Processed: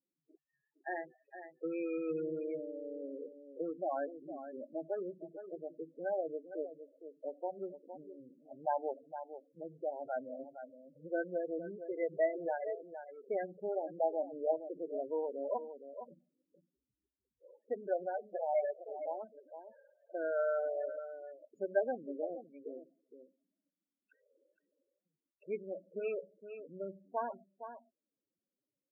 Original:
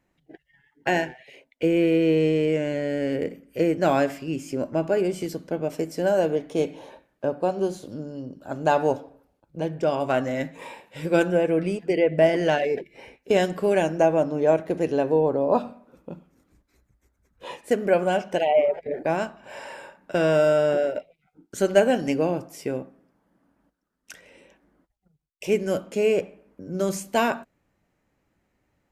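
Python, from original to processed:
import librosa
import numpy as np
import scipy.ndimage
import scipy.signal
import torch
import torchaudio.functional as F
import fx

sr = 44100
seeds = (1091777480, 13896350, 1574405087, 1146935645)

p1 = fx.wiener(x, sr, points=41)
p2 = fx.highpass(p1, sr, hz=1100.0, slope=6)
p3 = p2 + fx.echo_single(p2, sr, ms=462, db=-10.5, dry=0)
p4 = fx.spec_topn(p3, sr, count=8)
y = p4 * 10.0 ** (-6.0 / 20.0)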